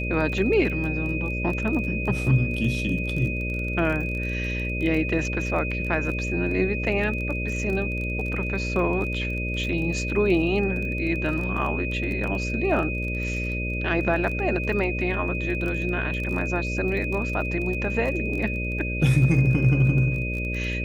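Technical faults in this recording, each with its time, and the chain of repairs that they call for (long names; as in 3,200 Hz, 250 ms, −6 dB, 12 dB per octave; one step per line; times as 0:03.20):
mains buzz 60 Hz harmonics 10 −29 dBFS
surface crackle 22 per second −30 dBFS
whistle 2,500 Hz −30 dBFS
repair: click removal
notch filter 2,500 Hz, Q 30
hum removal 60 Hz, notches 10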